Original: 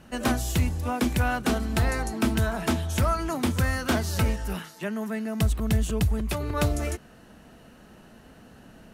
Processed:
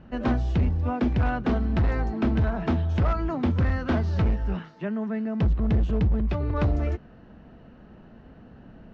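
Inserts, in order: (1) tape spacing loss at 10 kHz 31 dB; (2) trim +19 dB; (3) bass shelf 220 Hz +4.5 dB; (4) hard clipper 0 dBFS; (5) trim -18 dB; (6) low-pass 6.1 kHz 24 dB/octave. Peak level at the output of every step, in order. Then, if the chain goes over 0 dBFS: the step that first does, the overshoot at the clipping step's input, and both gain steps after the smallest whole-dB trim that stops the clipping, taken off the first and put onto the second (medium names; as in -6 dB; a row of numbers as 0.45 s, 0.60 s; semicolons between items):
-15.5 dBFS, +3.5 dBFS, +7.5 dBFS, 0.0 dBFS, -18.0 dBFS, -17.5 dBFS; step 2, 7.5 dB; step 2 +11 dB, step 5 -10 dB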